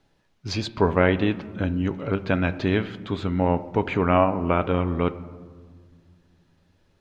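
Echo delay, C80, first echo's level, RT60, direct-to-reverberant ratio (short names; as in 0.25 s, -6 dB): none, 17.0 dB, none, 1.7 s, 10.0 dB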